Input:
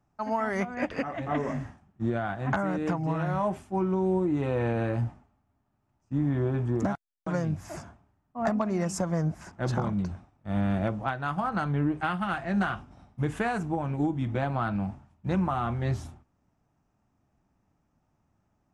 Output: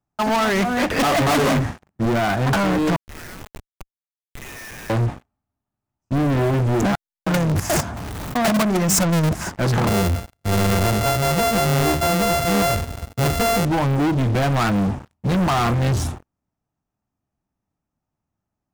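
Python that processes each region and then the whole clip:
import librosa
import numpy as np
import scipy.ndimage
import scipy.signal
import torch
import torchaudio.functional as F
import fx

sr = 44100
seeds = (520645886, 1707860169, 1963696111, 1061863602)

y = fx.chain(x, sr, fx.leveller(passes=3),
    fx.highpass(hz=71.0, slope=12), at=(0.99, 1.6))
y = fx.chain(y, sr, fx.cheby1_highpass(hz=1800.0, order=4),
    fx.schmitt(flips_db=-47.5), at=(2.96, 4.9))
y = fx.chain(y, sr, fx.zero_step(step_db=-42.0),
    fx.level_steps(step_db=13),
    fx.leveller(passes=2), at=(7.28, 9.36))
y = fx.chain(y, sr, fx.sample_sort(block=64),
    fx.peak_eq(hz=72.0, db=14.0, octaves=0.56), at=(9.87, 13.65))
y = fx.leveller(y, sr, passes=5)
y = fx.high_shelf(y, sr, hz=6400.0, db=5.0)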